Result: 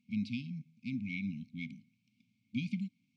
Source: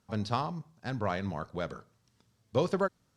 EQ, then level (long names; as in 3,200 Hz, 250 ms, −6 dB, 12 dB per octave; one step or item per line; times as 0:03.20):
formant filter u
high-pass filter 110 Hz
linear-phase brick-wall band-stop 260–2,100 Hz
+16.5 dB